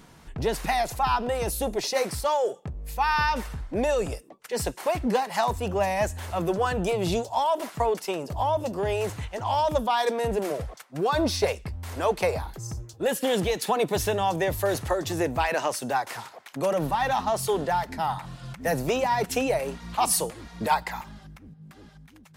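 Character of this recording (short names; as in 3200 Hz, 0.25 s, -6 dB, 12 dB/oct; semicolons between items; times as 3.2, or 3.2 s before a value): noise floor -52 dBFS; spectral tilt -4.0 dB/oct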